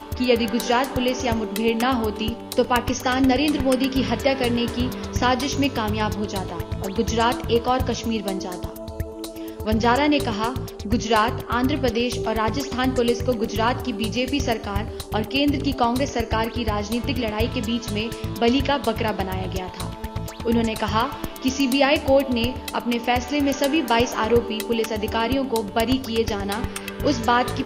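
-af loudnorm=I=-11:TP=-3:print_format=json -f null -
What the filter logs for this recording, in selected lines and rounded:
"input_i" : "-22.7",
"input_tp" : "-3.7",
"input_lra" : "2.5",
"input_thresh" : "-32.8",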